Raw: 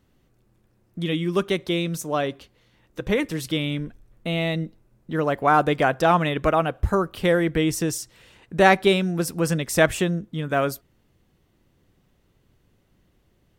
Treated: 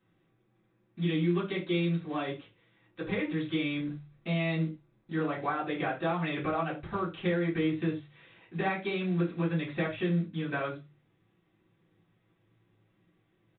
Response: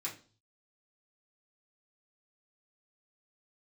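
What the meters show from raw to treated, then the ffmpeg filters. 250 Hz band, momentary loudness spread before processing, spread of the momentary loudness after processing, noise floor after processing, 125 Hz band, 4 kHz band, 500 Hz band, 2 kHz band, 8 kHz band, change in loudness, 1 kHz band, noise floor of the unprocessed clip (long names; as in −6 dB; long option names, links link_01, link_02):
−5.5 dB, 13 LU, 8 LU, −72 dBFS, −5.5 dB, −11.0 dB, −11.5 dB, −10.0 dB, below −40 dB, −9.0 dB, −12.5 dB, −65 dBFS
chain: -filter_complex "[0:a]bandreject=frequency=48.94:width_type=h:width=4,bandreject=frequency=97.88:width_type=h:width=4,bandreject=frequency=146.82:width_type=h:width=4,acompressor=threshold=-22dB:ratio=8,aresample=8000,acrusher=bits=6:mode=log:mix=0:aa=0.000001,aresample=44100[link_01];[1:a]atrim=start_sample=2205,afade=type=out:start_time=0.16:duration=0.01,atrim=end_sample=7497[link_02];[link_01][link_02]afir=irnorm=-1:irlink=0,volume=-4.5dB"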